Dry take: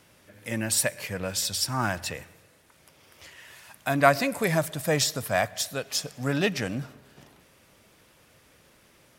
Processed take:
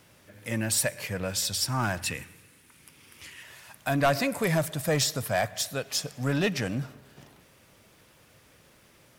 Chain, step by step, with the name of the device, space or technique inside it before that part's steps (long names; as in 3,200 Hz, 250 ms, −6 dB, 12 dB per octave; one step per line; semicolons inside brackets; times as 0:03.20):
0:02.01–0:03.43: graphic EQ with 15 bands 250 Hz +5 dB, 630 Hz −10 dB, 2,500 Hz +5 dB, 10,000 Hz +7 dB
open-reel tape (soft clipping −16.5 dBFS, distortion −12 dB; parametric band 120 Hz +3 dB 0.88 octaves; white noise bed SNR 44 dB)